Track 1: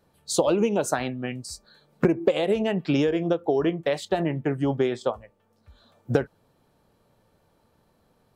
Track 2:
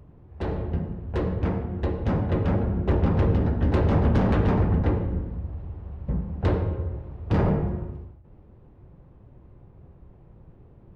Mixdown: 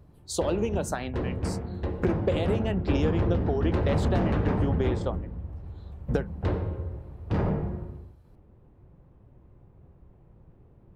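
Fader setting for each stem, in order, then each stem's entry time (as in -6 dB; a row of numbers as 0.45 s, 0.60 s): -6.0 dB, -4.5 dB; 0.00 s, 0.00 s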